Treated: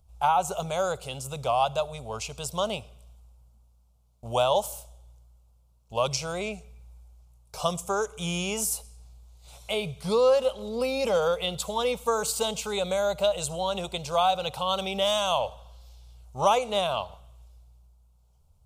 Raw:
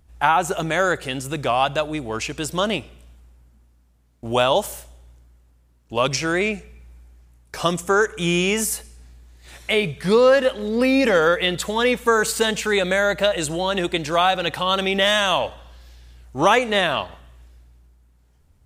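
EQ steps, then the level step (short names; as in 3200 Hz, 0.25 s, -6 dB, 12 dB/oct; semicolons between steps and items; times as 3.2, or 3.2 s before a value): fixed phaser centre 740 Hz, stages 4; -3.5 dB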